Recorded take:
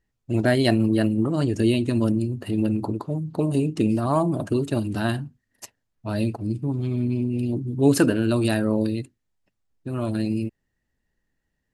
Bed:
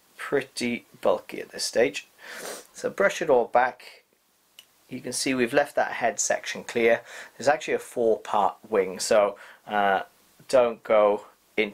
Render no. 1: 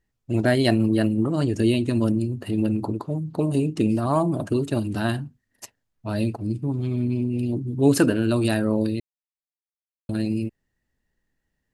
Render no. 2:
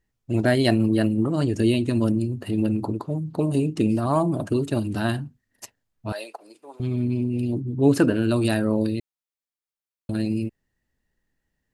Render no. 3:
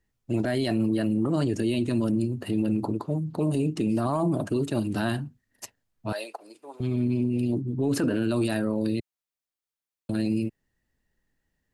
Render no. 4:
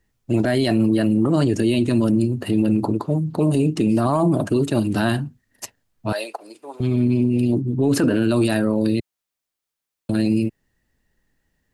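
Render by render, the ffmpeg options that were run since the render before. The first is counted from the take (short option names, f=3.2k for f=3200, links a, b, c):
-filter_complex "[0:a]asplit=3[a][b][c];[a]atrim=end=9,asetpts=PTS-STARTPTS,afade=t=out:st=8.996:d=0.004:c=hsin[d];[b]atrim=start=9:end=10.09,asetpts=PTS-STARTPTS,volume=0[e];[c]atrim=start=10.09,asetpts=PTS-STARTPTS,afade=t=in:d=0.004:c=hsin[f];[d][e][f]concat=n=3:v=0:a=1"
-filter_complex "[0:a]asettb=1/sr,asplit=3[a][b][c];[a]atrim=end=6.124[d];[b]atrim=start=6.12:end=6.8,asetpts=PTS-STARTPTS,afade=t=in:d=0.004:c=qsin,afade=t=out:st=0.676:d=0.004:c=qsin,highpass=f=550:w=0.5412,highpass=f=550:w=1.3066[e];[c]atrim=start=6.796[f];[d][e]acrossfade=d=0.004:c1=hsin:c2=qsin[g];[g][f]acrossfade=d=0.004:c1=qsin:c2=hsin,asettb=1/sr,asplit=3[h][i][j];[h]atrim=end=7.614[k];[i]atrim=start=7.61:end=8.14,asetpts=PTS-STARTPTS,afade=t=in:d=0.004:c=qsin,afade=t=out:st=0.526:d=0.004:c=qsin,highshelf=f=3.9k:g=-9[l];[j]atrim=start=8.136[m];[k][l]acrossfade=d=0.004:c1=hsin:c2=qsin[n];[n][m]acrossfade=d=0.004:c1=qsin:c2=hsin"
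-filter_complex "[0:a]acrossover=split=110[a][b];[a]acompressor=threshold=-45dB:ratio=6[c];[b]alimiter=limit=-17.5dB:level=0:latency=1:release=12[d];[c][d]amix=inputs=2:normalize=0"
-af "volume=7dB"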